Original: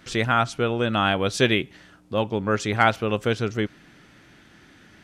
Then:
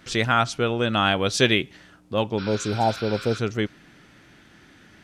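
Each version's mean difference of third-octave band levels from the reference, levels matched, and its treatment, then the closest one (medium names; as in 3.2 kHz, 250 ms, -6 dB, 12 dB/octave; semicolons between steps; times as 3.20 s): 1.0 dB: spectral replace 2.41–3.36 s, 1–5.7 kHz after; dynamic bell 5.1 kHz, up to +5 dB, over -39 dBFS, Q 0.84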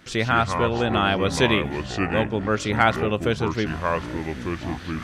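8.0 dB: reverse; upward compressor, threshold -29 dBFS; reverse; ever faster or slower copies 106 ms, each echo -5 st, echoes 3, each echo -6 dB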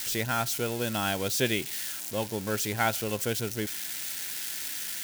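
12.0 dB: zero-crossing glitches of -16.5 dBFS; band-stop 1.2 kHz, Q 5.4; trim -7.5 dB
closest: first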